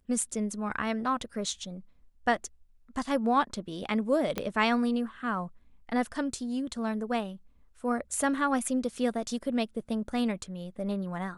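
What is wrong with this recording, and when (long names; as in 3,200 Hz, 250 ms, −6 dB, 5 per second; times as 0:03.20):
0:04.38: click −15 dBFS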